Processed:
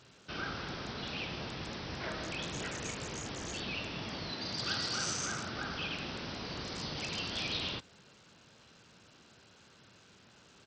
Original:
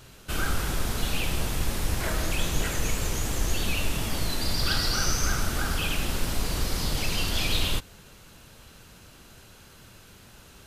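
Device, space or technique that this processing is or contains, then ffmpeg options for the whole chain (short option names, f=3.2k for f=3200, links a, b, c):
Bluetooth headset: -filter_complex "[0:a]asettb=1/sr,asplit=3[a][b][c];[a]atrim=end=4.314[d];[b]atrim=start=4.31:end=5.54,asetpts=PTS-STARTPTS,afade=t=in:d=0.004:c=qsin,afade=t=out:st=1.226:d=0.004:c=qsin,highpass=f=78:w=0.5412,highpass=f=78:w=1.3066[e];[c]atrim=start=5.536[f];[d][e]acrossfade=d=0.004:c1=hsin:c2=qsin[g];[g][f]acrossfade=d=0.004:c1=qsin:c2=hsin,highpass=130,aresample=16000,aresample=44100,volume=-7.5dB" -ar 44100 -c:a sbc -b:a 64k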